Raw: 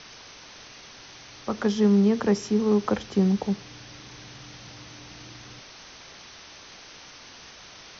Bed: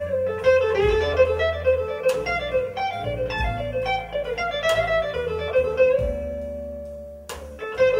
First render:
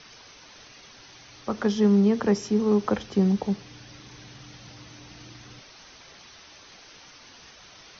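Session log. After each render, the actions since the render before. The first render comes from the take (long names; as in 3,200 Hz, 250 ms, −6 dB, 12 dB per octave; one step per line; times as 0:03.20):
broadband denoise 6 dB, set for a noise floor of −47 dBFS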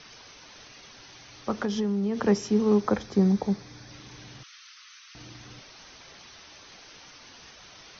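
0:01.51–0:02.20: downward compressor 12 to 1, threshold −23 dBFS
0:02.80–0:03.91: parametric band 2,900 Hz −12.5 dB 0.24 octaves
0:04.43–0:05.15: elliptic high-pass filter 1,200 Hz, stop band 50 dB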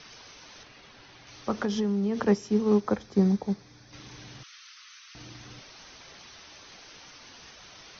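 0:00.63–0:01.27: high-frequency loss of the air 150 metres
0:02.24–0:03.93: expander for the loud parts, over −31 dBFS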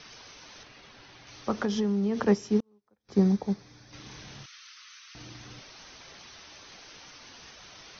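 0:02.60–0:03.09: gate with flip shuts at −30 dBFS, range −41 dB
0:04.03–0:04.46: double-tracking delay 29 ms −5.5 dB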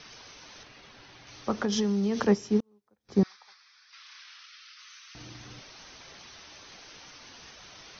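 0:01.72–0:02.27: high-shelf EQ 3,300 Hz +11 dB
0:03.23–0:04.79: Chebyshev band-pass filter 1,200–5,300 Hz, order 3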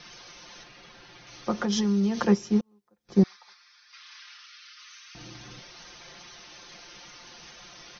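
comb filter 5.7 ms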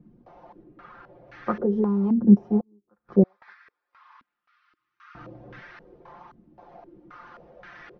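low-pass on a step sequencer 3.8 Hz 250–1,700 Hz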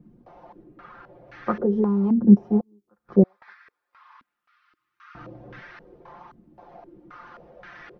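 level +1.5 dB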